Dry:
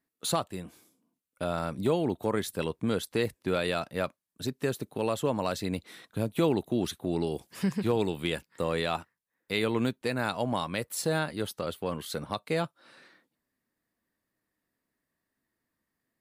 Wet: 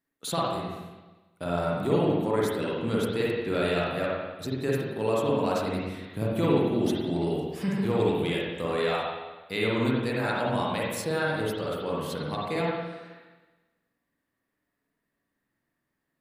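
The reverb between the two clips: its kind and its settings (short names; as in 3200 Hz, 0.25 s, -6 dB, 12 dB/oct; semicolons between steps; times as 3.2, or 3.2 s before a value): spring tank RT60 1.2 s, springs 46/53 ms, chirp 45 ms, DRR -5 dB; gain -3 dB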